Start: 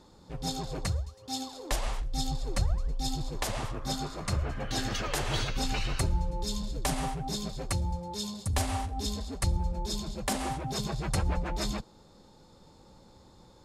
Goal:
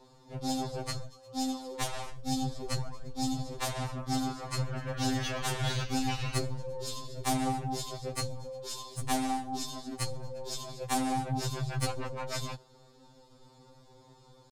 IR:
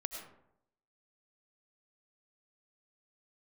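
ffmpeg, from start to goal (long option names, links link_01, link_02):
-af "aeval=exprs='0.168*(cos(1*acos(clip(val(0)/0.168,-1,1)))-cos(1*PI/2))+0.0335*(cos(4*acos(clip(val(0)/0.168,-1,1)))-cos(4*PI/2))+0.0299*(cos(6*acos(clip(val(0)/0.168,-1,1)))-cos(6*PI/2))+0.015*(cos(8*acos(clip(val(0)/0.168,-1,1)))-cos(8*PI/2))':channel_layout=same,atempo=0.94,afftfilt=real='re*2.45*eq(mod(b,6),0)':imag='im*2.45*eq(mod(b,6),0)':win_size=2048:overlap=0.75,volume=1dB"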